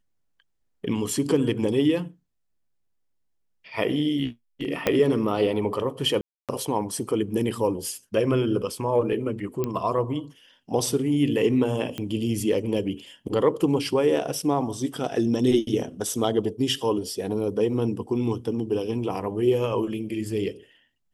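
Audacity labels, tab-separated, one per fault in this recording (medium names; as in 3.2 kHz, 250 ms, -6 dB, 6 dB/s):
4.870000	4.870000	pop -7 dBFS
6.210000	6.490000	dropout 277 ms
9.640000	9.640000	pop -14 dBFS
11.980000	11.980000	pop -17 dBFS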